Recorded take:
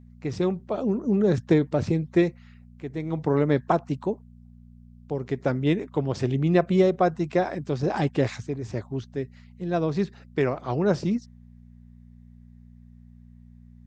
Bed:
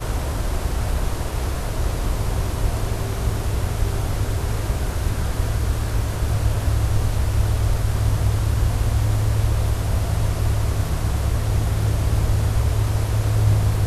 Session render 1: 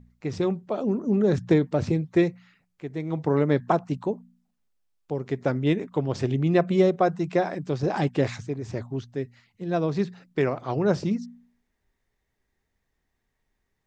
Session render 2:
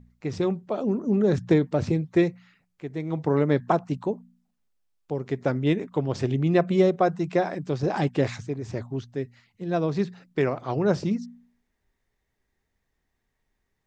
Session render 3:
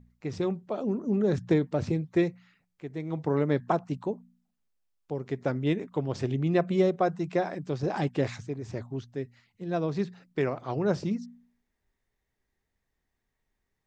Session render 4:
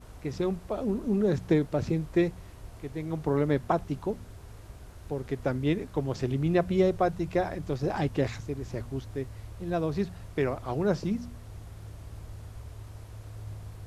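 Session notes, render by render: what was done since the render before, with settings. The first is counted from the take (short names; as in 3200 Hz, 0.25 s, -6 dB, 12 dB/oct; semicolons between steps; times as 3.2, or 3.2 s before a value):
de-hum 60 Hz, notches 4
nothing audible
gain -4 dB
add bed -23.5 dB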